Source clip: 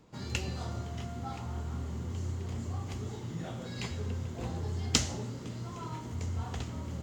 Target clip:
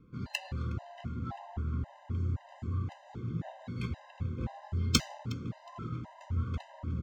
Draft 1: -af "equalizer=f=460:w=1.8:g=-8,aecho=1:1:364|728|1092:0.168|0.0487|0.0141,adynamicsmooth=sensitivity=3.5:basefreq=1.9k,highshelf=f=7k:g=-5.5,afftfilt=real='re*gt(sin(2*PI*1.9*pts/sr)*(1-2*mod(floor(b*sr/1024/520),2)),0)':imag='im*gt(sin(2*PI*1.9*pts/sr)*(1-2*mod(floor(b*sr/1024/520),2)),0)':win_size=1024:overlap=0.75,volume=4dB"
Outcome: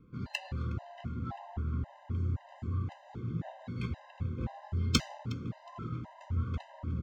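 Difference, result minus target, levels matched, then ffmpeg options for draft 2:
8000 Hz band -3.5 dB
-af "equalizer=f=460:w=1.8:g=-8,aecho=1:1:364|728|1092:0.168|0.0487|0.0141,adynamicsmooth=sensitivity=3.5:basefreq=1.9k,highshelf=f=7k:g=2.5,afftfilt=real='re*gt(sin(2*PI*1.9*pts/sr)*(1-2*mod(floor(b*sr/1024/520),2)),0)':imag='im*gt(sin(2*PI*1.9*pts/sr)*(1-2*mod(floor(b*sr/1024/520),2)),0)':win_size=1024:overlap=0.75,volume=4dB"

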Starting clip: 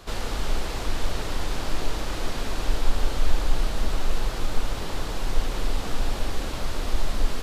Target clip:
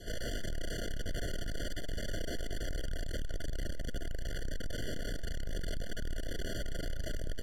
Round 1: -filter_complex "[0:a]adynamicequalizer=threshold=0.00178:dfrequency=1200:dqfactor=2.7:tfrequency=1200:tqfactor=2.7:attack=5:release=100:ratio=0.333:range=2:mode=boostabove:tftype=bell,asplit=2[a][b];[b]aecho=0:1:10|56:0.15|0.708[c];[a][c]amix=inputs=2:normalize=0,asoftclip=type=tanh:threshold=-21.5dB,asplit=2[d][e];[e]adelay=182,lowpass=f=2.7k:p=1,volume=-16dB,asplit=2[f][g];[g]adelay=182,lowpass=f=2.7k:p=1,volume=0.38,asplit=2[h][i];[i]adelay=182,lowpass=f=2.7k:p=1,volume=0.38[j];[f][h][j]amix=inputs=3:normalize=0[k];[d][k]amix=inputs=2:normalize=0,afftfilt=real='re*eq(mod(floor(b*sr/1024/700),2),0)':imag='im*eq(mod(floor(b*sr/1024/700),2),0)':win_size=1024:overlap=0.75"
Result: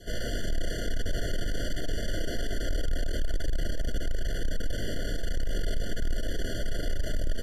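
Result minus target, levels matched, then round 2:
soft clip: distortion -4 dB
-filter_complex "[0:a]adynamicequalizer=threshold=0.00178:dfrequency=1200:dqfactor=2.7:tfrequency=1200:tqfactor=2.7:attack=5:release=100:ratio=0.333:range=2:mode=boostabove:tftype=bell,asplit=2[a][b];[b]aecho=0:1:10|56:0.15|0.708[c];[a][c]amix=inputs=2:normalize=0,asoftclip=type=tanh:threshold=-32dB,asplit=2[d][e];[e]adelay=182,lowpass=f=2.7k:p=1,volume=-16dB,asplit=2[f][g];[g]adelay=182,lowpass=f=2.7k:p=1,volume=0.38,asplit=2[h][i];[i]adelay=182,lowpass=f=2.7k:p=1,volume=0.38[j];[f][h][j]amix=inputs=3:normalize=0[k];[d][k]amix=inputs=2:normalize=0,afftfilt=real='re*eq(mod(floor(b*sr/1024/700),2),0)':imag='im*eq(mod(floor(b*sr/1024/700),2),0)':win_size=1024:overlap=0.75"

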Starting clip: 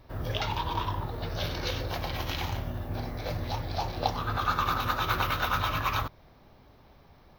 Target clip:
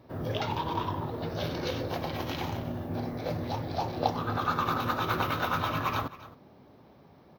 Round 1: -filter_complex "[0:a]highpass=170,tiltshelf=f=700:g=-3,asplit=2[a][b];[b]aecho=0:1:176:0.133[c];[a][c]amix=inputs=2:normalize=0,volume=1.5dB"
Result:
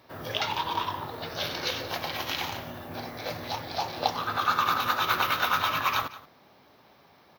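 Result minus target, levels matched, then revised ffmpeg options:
echo 90 ms early; 500 Hz band -5.0 dB
-filter_complex "[0:a]highpass=170,tiltshelf=f=700:g=6,asplit=2[a][b];[b]aecho=0:1:266:0.133[c];[a][c]amix=inputs=2:normalize=0,volume=1.5dB"

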